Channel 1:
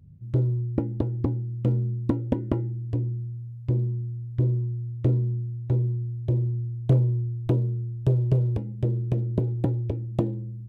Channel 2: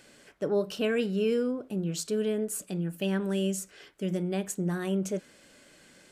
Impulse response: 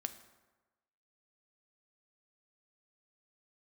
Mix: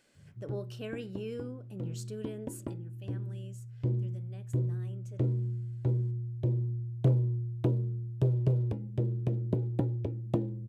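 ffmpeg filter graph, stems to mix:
-filter_complex "[0:a]highpass=89,adelay=150,volume=-4.5dB[link_01];[1:a]volume=-12.5dB,afade=type=out:start_time=2.58:duration=0.25:silence=0.354813,asplit=2[link_02][link_03];[link_03]apad=whole_len=477787[link_04];[link_01][link_04]sidechaincompress=threshold=-48dB:ratio=8:attack=37:release=1470[link_05];[link_05][link_02]amix=inputs=2:normalize=0"

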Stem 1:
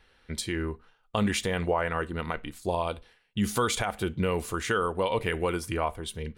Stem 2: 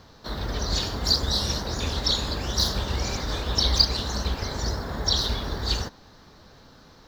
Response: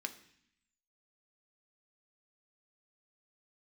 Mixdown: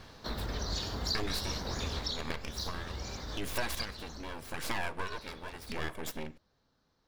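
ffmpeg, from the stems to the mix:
-filter_complex "[0:a]aecho=1:1:1.8:0.59,aeval=exprs='abs(val(0))':channel_layout=same,aeval=exprs='val(0)*pow(10,-19*(0.5-0.5*cos(2*PI*0.83*n/s))/20)':channel_layout=same,volume=2.5dB,asplit=2[link_01][link_02];[link_02]volume=-6dB[link_03];[1:a]volume=-2dB,afade=type=out:start_time=1.94:duration=0.28:silence=0.334965,afade=type=out:start_time=3.73:duration=0.57:silence=0.251189[link_04];[2:a]atrim=start_sample=2205[link_05];[link_03][link_05]afir=irnorm=-1:irlink=0[link_06];[link_01][link_04][link_06]amix=inputs=3:normalize=0,acompressor=threshold=-35dB:ratio=2.5"

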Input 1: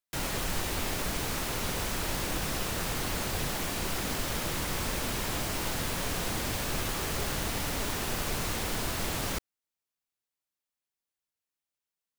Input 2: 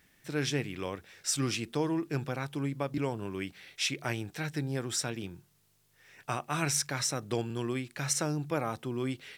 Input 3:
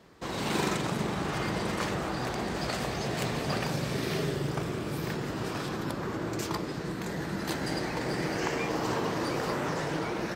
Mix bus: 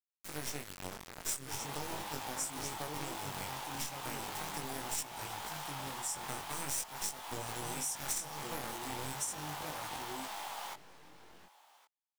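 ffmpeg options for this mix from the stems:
ffmpeg -i stem1.wav -i stem2.wav -i stem3.wav -filter_complex "[0:a]highpass=frequency=840:width_type=q:width=5.2,equalizer=frequency=3300:width_type=o:width=0.39:gain=4.5,adelay=1350,volume=-9.5dB,asplit=2[link_01][link_02];[link_02]volume=-21dB[link_03];[1:a]aexciter=amount=5.9:drive=8.1:freq=5900,volume=-1dB,asplit=2[link_04][link_05];[link_05]volume=-11.5dB[link_06];[2:a]alimiter=limit=-21.5dB:level=0:latency=1:release=238,aeval=exprs='0.0841*(cos(1*acos(clip(val(0)/0.0841,-1,1)))-cos(1*PI/2))+0.0335*(cos(8*acos(clip(val(0)/0.0841,-1,1)))-cos(8*PI/2))':channel_layout=same,volume=-5dB,asplit=2[link_07][link_08];[link_08]volume=-23.5dB[link_09];[link_04][link_07]amix=inputs=2:normalize=0,acrusher=bits=3:dc=4:mix=0:aa=0.000001,alimiter=limit=-12dB:level=0:latency=1:release=363,volume=0dB[link_10];[link_03][link_06][link_09]amix=inputs=3:normalize=0,aecho=0:1:1116:1[link_11];[link_01][link_10][link_11]amix=inputs=3:normalize=0,flanger=delay=19:depth=3.6:speed=0.4,acompressor=threshold=-36dB:ratio=3" out.wav

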